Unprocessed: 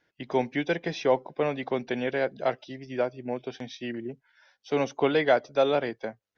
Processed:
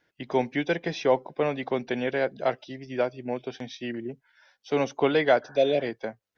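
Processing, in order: 2.99–3.43 dynamic EQ 3600 Hz, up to +4 dB, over -50 dBFS, Q 0.8; 5.45–5.84 spectral repair 730–1800 Hz; gain +1 dB

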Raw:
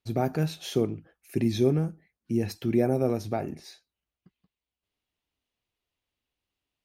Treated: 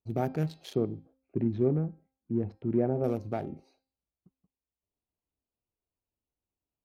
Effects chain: Wiener smoothing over 25 samples; 0.75–3.04 LPF 1400 Hz 12 dB/oct; de-hum 264.5 Hz, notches 20; gain -3 dB

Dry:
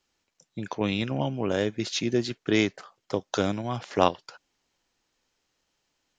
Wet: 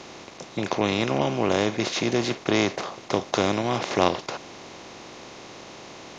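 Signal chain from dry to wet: per-bin compression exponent 0.4; gain -2 dB

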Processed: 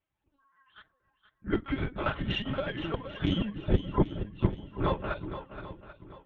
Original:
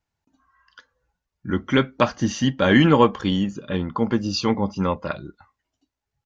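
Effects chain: phase scrambler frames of 50 ms; 1.74–2.94 negative-ratio compressor -27 dBFS, ratio -1; 3.67–4.7 tilt -4 dB/oct; LPC vocoder at 8 kHz pitch kept; flipped gate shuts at -6 dBFS, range -26 dB; tube stage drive 6 dB, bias 0.65; bell 3100 Hz +2 dB; notch comb 240 Hz; swung echo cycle 0.788 s, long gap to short 1.5:1, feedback 30%, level -11 dB

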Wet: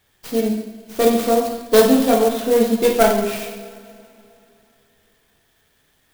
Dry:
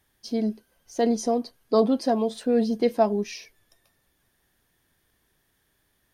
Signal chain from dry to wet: tracing distortion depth 0.31 ms; bell 3300 Hz +6.5 dB 1.3 oct; notches 60/120/180/240 Hz; two-slope reverb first 0.86 s, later 3.1 s, from -18 dB, DRR -2.5 dB; clock jitter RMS 0.043 ms; gain +2.5 dB

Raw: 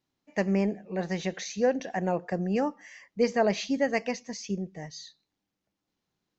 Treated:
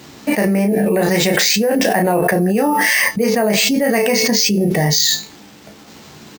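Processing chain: HPF 78 Hz; resonator 220 Hz, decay 0.3 s, harmonics all, mix 60%; early reflections 14 ms -6.5 dB, 34 ms -6 dB; careless resampling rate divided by 4×, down none, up hold; fast leveller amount 100%; gain +8.5 dB

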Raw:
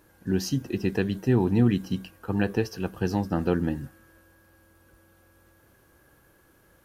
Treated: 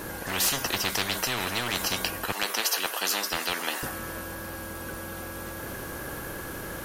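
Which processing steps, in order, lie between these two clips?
2.32–3.83 HPF 690 Hz 24 dB/oct; in parallel at -5 dB: overloaded stage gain 25 dB; on the sum: spectral compressor 10:1

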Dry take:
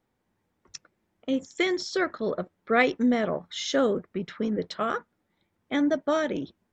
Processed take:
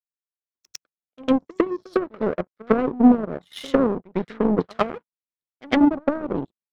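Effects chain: treble ducked by the level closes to 350 Hz, closed at -22.5 dBFS; AGC gain up to 14.5 dB; reverse echo 0.103 s -12 dB; power-law curve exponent 2; gain +1.5 dB

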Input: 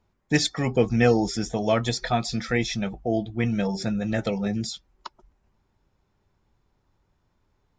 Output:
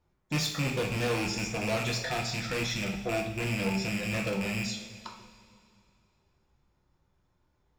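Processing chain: rattling part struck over -27 dBFS, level -13 dBFS; overloaded stage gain 24 dB; two-slope reverb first 0.58 s, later 2.5 s, from -13 dB, DRR 0 dB; gain -5.5 dB

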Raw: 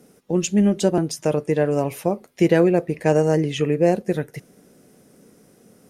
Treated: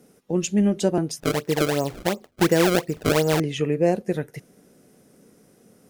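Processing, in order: 1.2–3.4 decimation with a swept rate 28×, swing 160% 2.8 Hz; gain -2.5 dB

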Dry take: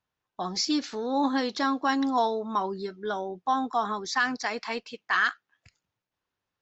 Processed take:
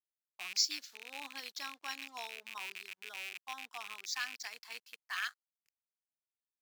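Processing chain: rattling part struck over -46 dBFS, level -18 dBFS; backlash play -42 dBFS; differentiator; upward expander 1.5:1, over -46 dBFS; gain +2 dB

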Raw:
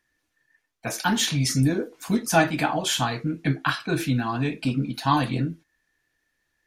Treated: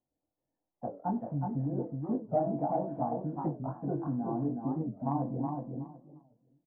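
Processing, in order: steep low-pass 750 Hz 36 dB/oct; bell 400 Hz -7 dB 0.38 oct; doubler 21 ms -6 dB; de-hum 166.7 Hz, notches 28; compressor, threshold -22 dBFS, peak gain reduction 7.5 dB; tilt +3 dB/oct; feedback echo 0.37 s, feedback 18%, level -4.5 dB; record warp 45 rpm, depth 250 cents

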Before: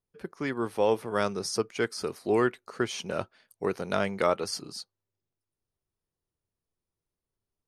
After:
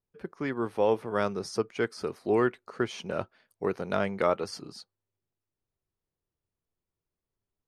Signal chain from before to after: high shelf 4300 Hz -11.5 dB

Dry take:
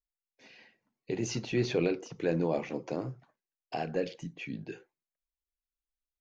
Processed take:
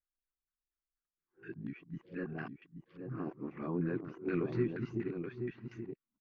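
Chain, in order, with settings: whole clip reversed; band shelf 660 Hz -15.5 dB 1.2 oct; echo 0.828 s -7 dB; LFO low-pass saw down 4.2 Hz 720–1700 Hz; gain -3.5 dB

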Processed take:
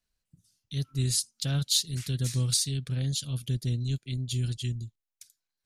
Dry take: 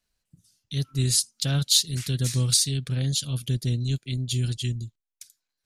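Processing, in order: low shelf 150 Hz +3.5 dB; gain -5.5 dB

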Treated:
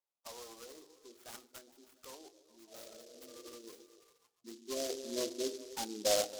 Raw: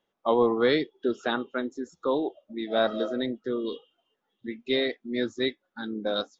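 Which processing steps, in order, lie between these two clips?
spectral repair 2.78–3.51, 320–2900 Hz both; soft clip -24.5 dBFS, distortion -9 dB; spectral gate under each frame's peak -20 dB strong; resonant high shelf 1800 Hz -12.5 dB, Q 1.5; delay with a stepping band-pass 0.137 s, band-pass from 270 Hz, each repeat 0.7 oct, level -11 dB; band-pass sweep 5700 Hz -> 740 Hz, 3.13–4.99; notches 50/100/150/200/250/300/350/400/450/500 Hz; on a send at -17.5 dB: reverb RT60 0.75 s, pre-delay 3 ms; on the sum: noise-modulated delay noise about 5000 Hz, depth 0.16 ms; gain +6.5 dB

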